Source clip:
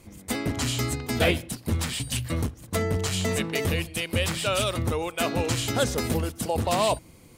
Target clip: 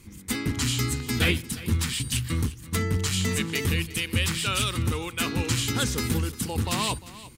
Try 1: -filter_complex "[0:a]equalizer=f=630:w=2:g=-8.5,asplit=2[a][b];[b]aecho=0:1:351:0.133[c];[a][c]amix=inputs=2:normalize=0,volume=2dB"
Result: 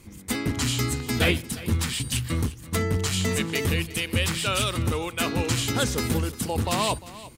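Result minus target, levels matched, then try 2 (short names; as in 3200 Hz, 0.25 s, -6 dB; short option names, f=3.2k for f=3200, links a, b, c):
500 Hz band +4.0 dB
-filter_complex "[0:a]equalizer=f=630:w=2:g=-19,asplit=2[a][b];[b]aecho=0:1:351:0.133[c];[a][c]amix=inputs=2:normalize=0,volume=2dB"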